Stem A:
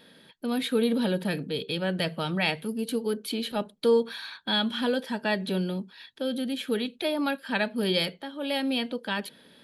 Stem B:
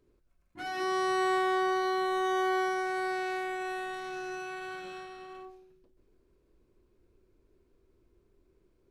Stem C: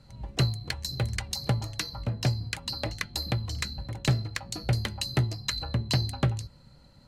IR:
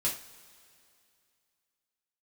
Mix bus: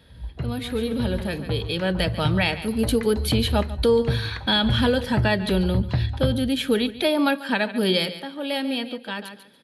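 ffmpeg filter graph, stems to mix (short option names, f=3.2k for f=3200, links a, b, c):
-filter_complex "[0:a]volume=-2.5dB,asplit=2[a][b];[b]volume=-8dB[c];[1:a]acompressor=threshold=-32dB:ratio=6,volume=-20dB[d];[2:a]lowpass=1.7k,equalizer=f=66:w=1.9:g=13.5,volume=-11.5dB,asplit=2[e][f];[f]volume=-4.5dB[g];[a][e]amix=inputs=2:normalize=0,dynaudnorm=f=420:g=9:m=11.5dB,alimiter=limit=-11dB:level=0:latency=1:release=394,volume=0dB[h];[3:a]atrim=start_sample=2205[i];[g][i]afir=irnorm=-1:irlink=0[j];[c]aecho=0:1:142|284|426|568:1|0.23|0.0529|0.0122[k];[d][h][j][k]amix=inputs=4:normalize=0"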